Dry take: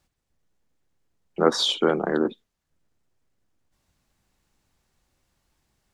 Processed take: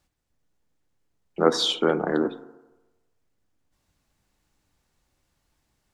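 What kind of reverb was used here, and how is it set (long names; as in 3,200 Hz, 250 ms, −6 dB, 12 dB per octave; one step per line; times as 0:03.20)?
feedback delay network reverb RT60 1.1 s, low-frequency decay 0.85×, high-frequency decay 0.25×, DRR 12 dB
level −1 dB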